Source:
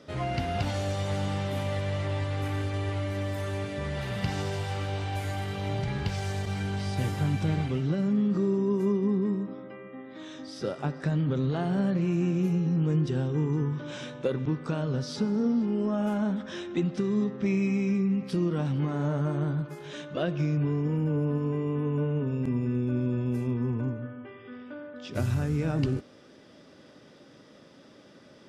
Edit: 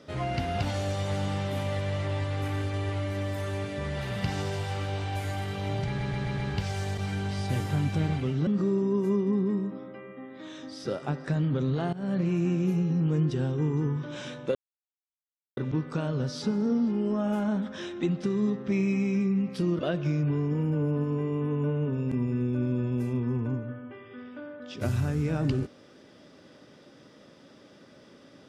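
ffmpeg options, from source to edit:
-filter_complex "[0:a]asplit=9[a][b][c][d][e][f][g][h][i];[a]atrim=end=5.992[j];[b]atrim=start=5.858:end=5.992[k];[c]atrim=start=5.858:end=5.992[l];[d]atrim=start=5.858:end=5.992[m];[e]atrim=start=5.858:end=7.952[n];[f]atrim=start=8.228:end=11.69,asetpts=PTS-STARTPTS,afade=t=out:st=3.458:d=0.004:c=hsin:silence=0.112202[o];[g]atrim=start=11.69:end=14.31,asetpts=PTS-STARTPTS,afade=t=in:d=0.25:silence=0.112202,afade=t=out:st=2.616:d=0.004:c=hsin,apad=pad_dur=1.02[p];[h]atrim=start=14.31:end=18.532,asetpts=PTS-STARTPTS,afade=t=in:d=0.004:c=hsin[q];[i]atrim=start=20.128[r];[j][k]acrossfade=d=0.004:c1=hsin:c2=hsin[s];[s][l]acrossfade=d=0.004:c1=hsin:c2=hsin[t];[t][m]acrossfade=d=0.004:c1=hsin:c2=hsin[u];[u][n]acrossfade=d=0.004:c1=hsin:c2=hsin[v];[o][p][q]concat=n=3:v=0:a=1[w];[v][w]acrossfade=d=0.004:c1=hsin:c2=hsin[x];[x][r]acrossfade=d=0.004:c1=hsin:c2=hsin"

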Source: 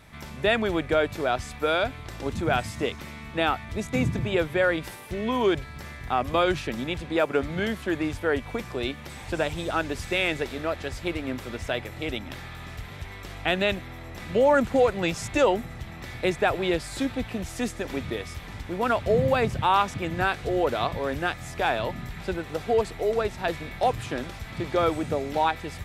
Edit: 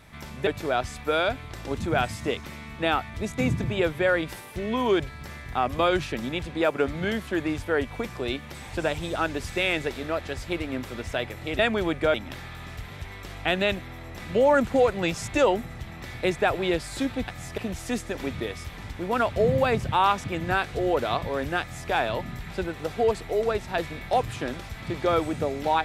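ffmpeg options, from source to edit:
-filter_complex "[0:a]asplit=6[a][b][c][d][e][f];[a]atrim=end=0.472[g];[b]atrim=start=1.018:end=12.142[h];[c]atrim=start=0.468:end=1.022[i];[d]atrim=start=12.138:end=17.282[j];[e]atrim=start=21.308:end=21.612[k];[f]atrim=start=17.278[l];[g][h]acrossfade=d=0.004:c1=hsin:c2=hsin[m];[m][i]acrossfade=d=0.004:c1=hsin:c2=hsin[n];[n][j]acrossfade=d=0.004:c1=hsin:c2=hsin[o];[o][k]acrossfade=d=0.004:c1=hsin:c2=hsin[p];[p][l]acrossfade=d=0.004:c1=hsin:c2=hsin"

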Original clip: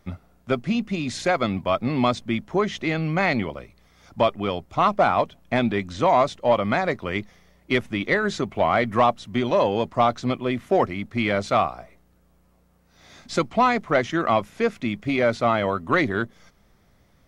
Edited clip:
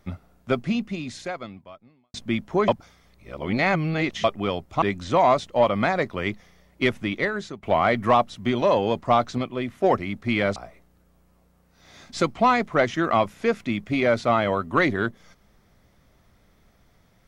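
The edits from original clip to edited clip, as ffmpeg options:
-filter_complex "[0:a]asplit=9[a][b][c][d][e][f][g][h][i];[a]atrim=end=2.14,asetpts=PTS-STARTPTS,afade=t=out:st=0.64:d=1.5:c=qua[j];[b]atrim=start=2.14:end=2.682,asetpts=PTS-STARTPTS,afade=t=in:d=0.004:c=hsin[k];[c]atrim=start=2.678:end=4.242,asetpts=PTS-STARTPTS,areverse[l];[d]atrim=start=4.238:end=4.822[m];[e]atrim=start=5.708:end=8.52,asetpts=PTS-STARTPTS,afade=t=out:st=2.202:d=0.61:silence=0.149624[n];[f]atrim=start=8.52:end=10.272,asetpts=PTS-STARTPTS,afade=t=in:d=0.004:c=hsin:silence=0.149624[o];[g]atrim=start=10.268:end=10.732,asetpts=PTS-STARTPTS,volume=-3.5dB[p];[h]atrim=start=10.728:end=11.452[q];[i]atrim=start=11.718[r];[j][k]concat=n=2:v=0:a=1[s];[s][l]acrossfade=d=0.004:c1=hsin:c2=hsin[t];[t][m]acrossfade=d=0.004:c1=hsin:c2=hsin[u];[n][o]concat=n=2:v=0:a=1[v];[u][v]acrossfade=d=0.004:c1=hsin:c2=hsin[w];[w][p]acrossfade=d=0.004:c1=hsin:c2=hsin[x];[x][q]acrossfade=d=0.004:c1=hsin:c2=hsin[y];[y][r]acrossfade=d=0.004:c1=hsin:c2=hsin"

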